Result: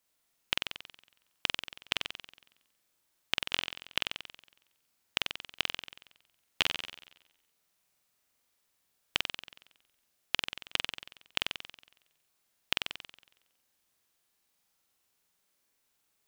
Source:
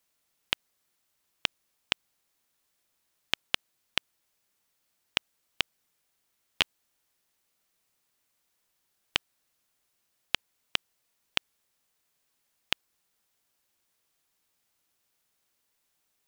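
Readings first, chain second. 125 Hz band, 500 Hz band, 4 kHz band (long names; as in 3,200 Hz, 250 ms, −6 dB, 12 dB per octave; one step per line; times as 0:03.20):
0.0 dB, 0.0 dB, 0.0 dB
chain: flutter between parallel walls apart 7.9 metres, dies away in 0.88 s
level −3 dB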